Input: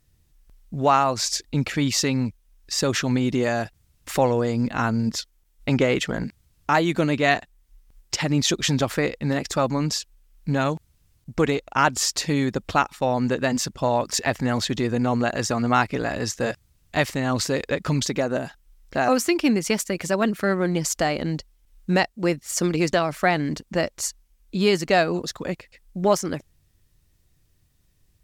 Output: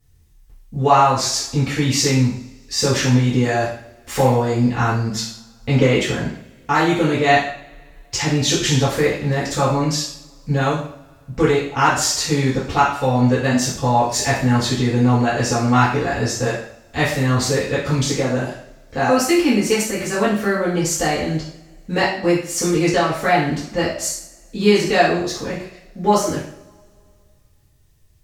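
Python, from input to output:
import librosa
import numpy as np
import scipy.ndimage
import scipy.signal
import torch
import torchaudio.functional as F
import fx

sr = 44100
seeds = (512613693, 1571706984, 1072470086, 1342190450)

y = fx.rev_double_slope(x, sr, seeds[0], early_s=0.55, late_s=2.4, knee_db=-27, drr_db=-9.5)
y = F.gain(torch.from_numpy(y), -5.5).numpy()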